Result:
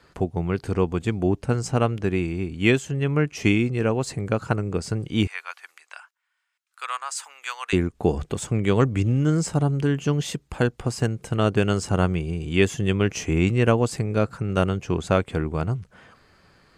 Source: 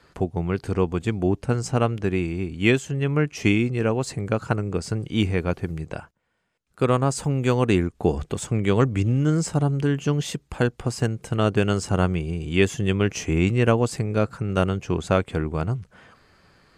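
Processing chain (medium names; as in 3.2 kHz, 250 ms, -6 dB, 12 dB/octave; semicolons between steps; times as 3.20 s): 5.27–7.73 s: high-pass 1.1 kHz 24 dB/octave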